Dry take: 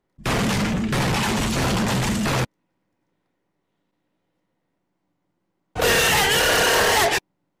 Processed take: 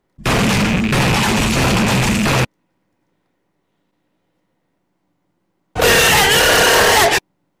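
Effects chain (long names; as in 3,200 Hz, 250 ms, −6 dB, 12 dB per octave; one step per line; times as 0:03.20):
loose part that buzzes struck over −25 dBFS, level −17 dBFS
level +6.5 dB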